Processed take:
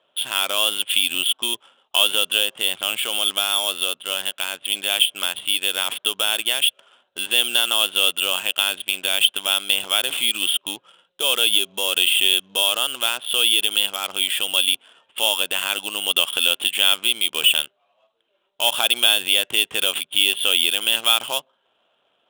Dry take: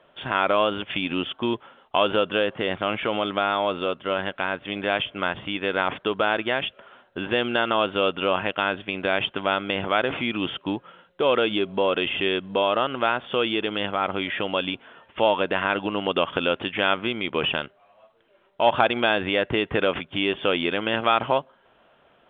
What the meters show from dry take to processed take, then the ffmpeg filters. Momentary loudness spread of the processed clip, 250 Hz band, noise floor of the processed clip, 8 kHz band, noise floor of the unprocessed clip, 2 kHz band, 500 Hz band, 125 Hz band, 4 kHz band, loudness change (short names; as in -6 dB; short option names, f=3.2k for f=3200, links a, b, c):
7 LU, -12.5 dB, -68 dBFS, n/a, -60 dBFS, +2.0 dB, -9.0 dB, under -15 dB, +12.5 dB, +6.0 dB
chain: -af "aexciter=amount=8.7:drive=3.7:freq=2.9k,adynamicsmooth=sensitivity=5:basefreq=1.6k,aemphasis=mode=production:type=riaa,volume=-6.5dB"